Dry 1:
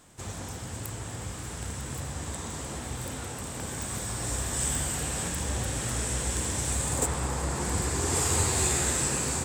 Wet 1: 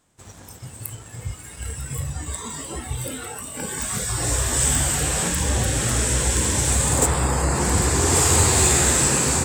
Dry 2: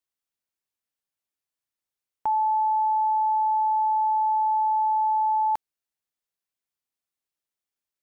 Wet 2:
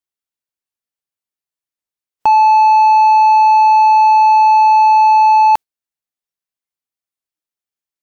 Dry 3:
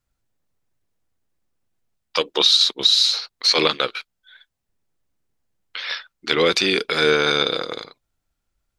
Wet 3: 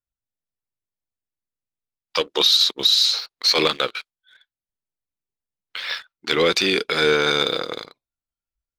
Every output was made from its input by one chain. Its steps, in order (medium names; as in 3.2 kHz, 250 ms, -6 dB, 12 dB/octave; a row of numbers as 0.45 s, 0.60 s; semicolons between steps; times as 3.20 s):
spectral noise reduction 13 dB; waveshaping leveller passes 1; peak normalisation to -6 dBFS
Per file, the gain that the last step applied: +5.5 dB, +13.5 dB, -3.5 dB